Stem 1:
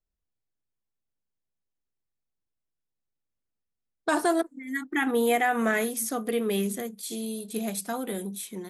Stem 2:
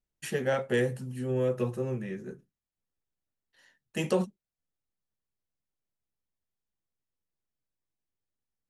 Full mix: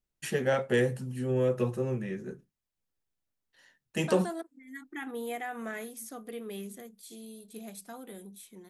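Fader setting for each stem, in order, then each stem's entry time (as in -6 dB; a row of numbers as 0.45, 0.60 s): -13.0, +1.0 dB; 0.00, 0.00 s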